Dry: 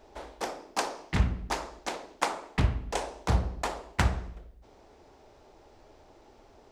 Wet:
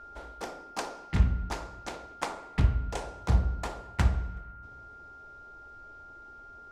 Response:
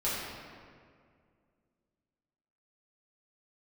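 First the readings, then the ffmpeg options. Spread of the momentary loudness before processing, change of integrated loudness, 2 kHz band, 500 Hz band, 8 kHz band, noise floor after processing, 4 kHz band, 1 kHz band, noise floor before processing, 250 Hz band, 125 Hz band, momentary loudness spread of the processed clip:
9 LU, 0.0 dB, -4.5 dB, -4.0 dB, -5.5 dB, -49 dBFS, -5.5 dB, -4.0 dB, -57 dBFS, -1.0 dB, +2.0 dB, 20 LU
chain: -filter_complex "[0:a]lowshelf=f=200:g=9,aeval=exprs='val(0)+0.01*sin(2*PI*1400*n/s)':c=same,asplit=2[a][b];[1:a]atrim=start_sample=2205[c];[b][c]afir=irnorm=-1:irlink=0,volume=-24dB[d];[a][d]amix=inputs=2:normalize=0,volume=-6dB"

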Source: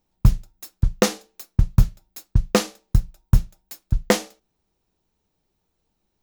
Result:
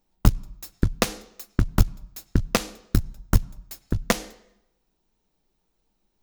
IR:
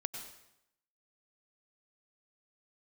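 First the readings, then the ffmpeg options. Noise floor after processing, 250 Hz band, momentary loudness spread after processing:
-74 dBFS, -1.5 dB, 16 LU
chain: -filter_complex "[0:a]equalizer=f=96:t=o:w=1.3:g=-14,acompressor=threshold=-21dB:ratio=3,asplit=2[a][b];[1:a]atrim=start_sample=2205,lowpass=5.5k[c];[b][c]afir=irnorm=-1:irlink=0,volume=-12dB[d];[a][d]amix=inputs=2:normalize=0,apsyclip=12.5dB,aeval=exprs='1.06*(cos(1*acos(clip(val(0)/1.06,-1,1)))-cos(1*PI/2))+0.473*(cos(3*acos(clip(val(0)/1.06,-1,1)))-cos(3*PI/2))+0.0266*(cos(7*acos(clip(val(0)/1.06,-1,1)))-cos(7*PI/2))':c=same,bass=f=250:g=6,treble=f=4k:g=2,volume=-8.5dB"

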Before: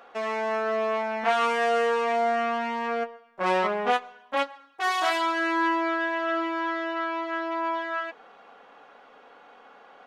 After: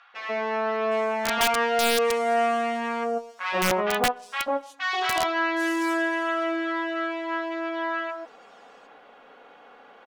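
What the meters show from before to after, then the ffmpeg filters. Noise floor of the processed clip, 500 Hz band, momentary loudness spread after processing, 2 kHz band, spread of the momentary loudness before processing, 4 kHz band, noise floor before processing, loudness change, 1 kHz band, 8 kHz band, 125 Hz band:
-52 dBFS, +1.0 dB, 8 LU, +1.5 dB, 7 LU, +5.0 dB, -53 dBFS, +1.0 dB, -0.5 dB, +11.5 dB, n/a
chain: -filter_complex "[0:a]acrossover=split=1100|5700[a][b][c];[a]adelay=140[d];[c]adelay=760[e];[d][b][e]amix=inputs=3:normalize=0,aeval=exprs='(mod(6.68*val(0)+1,2)-1)/6.68':c=same,volume=2.5dB"

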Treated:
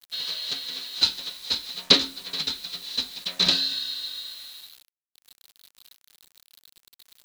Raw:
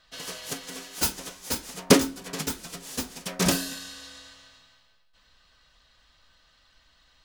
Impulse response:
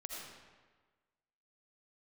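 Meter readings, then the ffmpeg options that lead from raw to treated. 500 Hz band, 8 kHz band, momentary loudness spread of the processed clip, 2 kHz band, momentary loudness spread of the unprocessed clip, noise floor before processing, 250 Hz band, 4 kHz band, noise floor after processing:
-8.5 dB, -8.0 dB, 15 LU, -0.5 dB, 18 LU, -63 dBFS, -9.5 dB, +11.0 dB, under -85 dBFS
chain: -af "lowpass=f=4k:t=q:w=13,acrusher=bits=6:mix=0:aa=0.000001,tiltshelf=f=970:g=-4,volume=-6dB"

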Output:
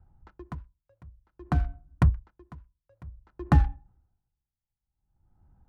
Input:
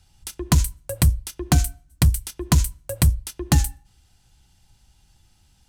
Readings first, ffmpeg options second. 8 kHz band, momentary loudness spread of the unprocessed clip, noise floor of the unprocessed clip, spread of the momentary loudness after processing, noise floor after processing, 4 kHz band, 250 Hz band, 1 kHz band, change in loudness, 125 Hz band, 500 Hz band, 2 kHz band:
under -35 dB, 10 LU, -60 dBFS, 19 LU, under -85 dBFS, under -20 dB, -7.5 dB, -4.5 dB, -4.5 dB, -7.5 dB, -9.5 dB, -9.0 dB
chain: -af "lowpass=f=1.3k:t=q:w=1.7,adynamicsmooth=sensitivity=7:basefreq=830,aeval=exprs='val(0)*pow(10,-34*(0.5-0.5*cos(2*PI*0.54*n/s))/20)':c=same"

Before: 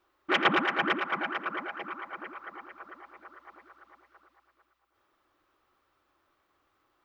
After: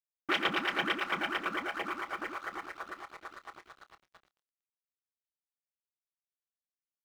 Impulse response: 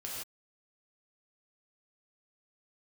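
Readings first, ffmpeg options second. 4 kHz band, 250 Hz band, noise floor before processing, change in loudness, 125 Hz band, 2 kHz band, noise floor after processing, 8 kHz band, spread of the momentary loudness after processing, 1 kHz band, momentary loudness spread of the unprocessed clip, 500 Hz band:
-1.0 dB, -4.5 dB, -75 dBFS, -4.0 dB, -5.0 dB, -3.0 dB, under -85 dBFS, n/a, 17 LU, -4.0 dB, 22 LU, -4.5 dB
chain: -filter_complex "[0:a]acrossover=split=460|2400[a][b][c];[a]acompressor=threshold=-46dB:ratio=4[d];[b]acompressor=threshold=-41dB:ratio=4[e];[c]acompressor=threshold=-39dB:ratio=4[f];[d][e][f]amix=inputs=3:normalize=0,aeval=exprs='sgn(val(0))*max(abs(val(0))-0.00168,0)':c=same,asplit=2[g][h];[h]adelay=28,volume=-13dB[i];[g][i]amix=inputs=2:normalize=0,volume=6.5dB"

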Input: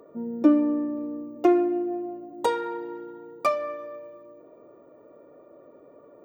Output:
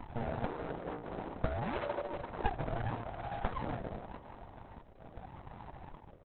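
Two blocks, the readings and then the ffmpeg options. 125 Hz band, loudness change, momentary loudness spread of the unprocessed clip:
+14.0 dB, -14.0 dB, 19 LU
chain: -filter_complex "[0:a]acompressor=threshold=-29dB:ratio=6,equalizer=f=1.5k:w=0.73:g=4.5,aecho=1:1:2.4:0.54,acrossover=split=860|2500[a][b][c];[a]acompressor=threshold=-37dB:ratio=4[d];[b]acompressor=threshold=-47dB:ratio=4[e];[c]acompressor=threshold=-57dB:ratio=4[f];[d][e][f]amix=inputs=3:normalize=0,acrusher=samples=38:mix=1:aa=0.000001:lfo=1:lforange=38:lforate=0.84,afwtdn=0.00891,aecho=1:1:423|846|1269|1692:0.0891|0.049|0.027|0.0148,afreqshift=-62,equalizer=f=460:w=0.66:g=10,aeval=exprs='abs(val(0))':c=same,volume=1dB" -ar 48000 -c:a libopus -b:a 6k

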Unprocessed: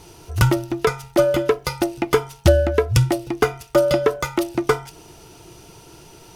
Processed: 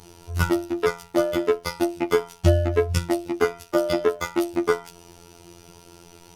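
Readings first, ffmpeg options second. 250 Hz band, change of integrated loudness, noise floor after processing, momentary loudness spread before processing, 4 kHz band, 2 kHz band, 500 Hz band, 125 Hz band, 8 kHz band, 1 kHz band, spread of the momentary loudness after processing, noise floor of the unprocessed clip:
-1.5 dB, -4.0 dB, -50 dBFS, 6 LU, -5.0 dB, -3.5 dB, -3.5 dB, -5.5 dB, -5.0 dB, -4.0 dB, 5 LU, -46 dBFS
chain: -af "afftfilt=real='hypot(re,im)*cos(PI*b)':imag='0':win_size=2048:overlap=0.75,asoftclip=type=tanh:threshold=-1dB"

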